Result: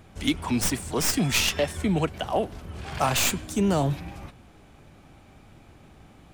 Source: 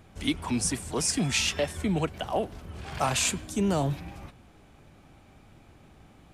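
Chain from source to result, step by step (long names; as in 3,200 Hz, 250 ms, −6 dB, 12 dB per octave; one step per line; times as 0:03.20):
stylus tracing distortion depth 0.062 ms
level +3 dB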